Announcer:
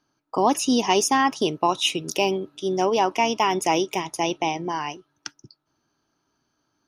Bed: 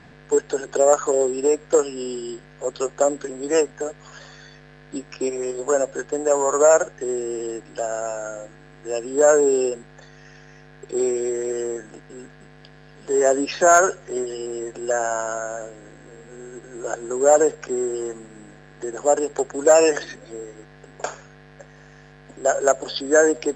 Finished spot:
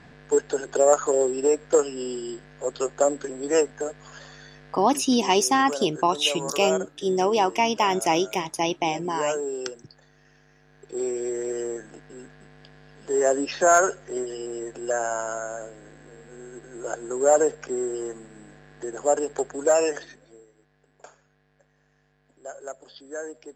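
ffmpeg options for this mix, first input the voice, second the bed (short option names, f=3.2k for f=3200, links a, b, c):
-filter_complex "[0:a]adelay=4400,volume=-0.5dB[a];[1:a]volume=6.5dB,afade=t=out:st=4.72:d=0.38:silence=0.316228,afade=t=in:st=10.59:d=0.81:silence=0.375837,afade=t=out:st=19.42:d=1.04:silence=0.16788[b];[a][b]amix=inputs=2:normalize=0"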